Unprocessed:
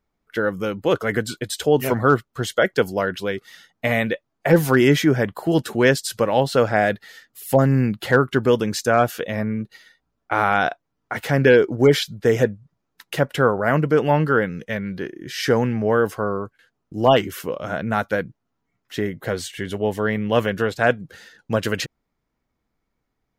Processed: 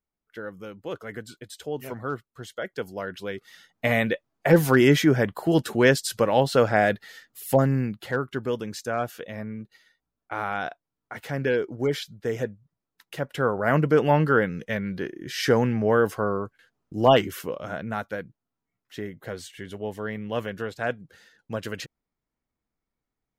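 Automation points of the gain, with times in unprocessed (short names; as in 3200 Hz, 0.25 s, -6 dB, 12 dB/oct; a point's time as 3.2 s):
2.63 s -14.5 dB
3.86 s -2 dB
7.47 s -2 dB
8.06 s -10.5 dB
13.17 s -10.5 dB
13.76 s -2 dB
17.2 s -2 dB
18.15 s -10 dB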